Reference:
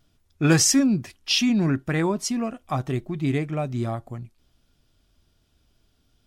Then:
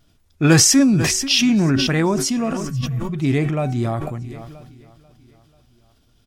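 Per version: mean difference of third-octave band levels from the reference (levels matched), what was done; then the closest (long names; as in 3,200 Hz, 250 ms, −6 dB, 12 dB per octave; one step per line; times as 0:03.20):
5.0 dB: hum removal 376.6 Hz, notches 29
healed spectral selection 0:02.67–0:03.11, 230–12,000 Hz before
on a send: repeating echo 489 ms, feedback 58%, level −23 dB
on the sum: level that may fall only so fast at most 28 dB per second
level +4.5 dB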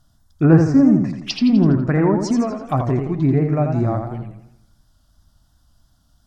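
8.0 dB: in parallel at −12 dB: gain into a clipping stage and back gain 20 dB
on the sum: treble cut that deepens with the level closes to 1,100 Hz, closed at −16.5 dBFS
phaser swept by the level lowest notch 400 Hz, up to 3,200 Hz, full sweep at −23 dBFS
feedback echo with a swinging delay time 83 ms, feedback 49%, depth 132 cents, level −6 dB
level +5 dB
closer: first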